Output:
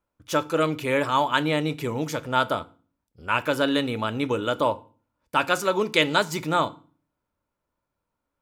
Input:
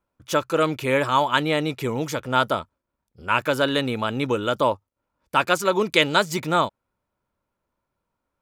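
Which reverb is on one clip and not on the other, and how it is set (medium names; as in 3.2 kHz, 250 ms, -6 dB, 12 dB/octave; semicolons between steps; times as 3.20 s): FDN reverb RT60 0.39 s, low-frequency decay 1.5×, high-frequency decay 0.9×, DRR 12.5 dB; trim -2.5 dB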